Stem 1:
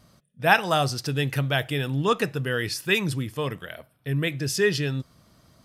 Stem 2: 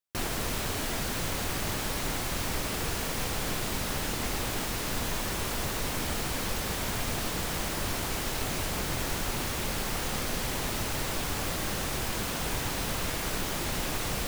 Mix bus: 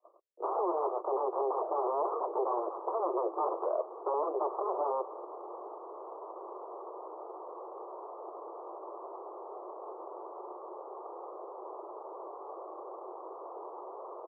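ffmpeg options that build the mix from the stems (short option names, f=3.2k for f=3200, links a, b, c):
-filter_complex "[0:a]agate=range=-34dB:threshold=-54dB:ratio=16:detection=peak,acompressor=threshold=-25dB:ratio=6,aeval=exprs='0.0841*sin(PI/2*4.47*val(0)/0.0841)':c=same,volume=0.5dB[a];[1:a]adelay=1100,volume=-5dB[b];[a][b]amix=inputs=2:normalize=0,asuperpass=centerf=640:order=20:qfactor=0.76,alimiter=limit=-22dB:level=0:latency=1:release=261"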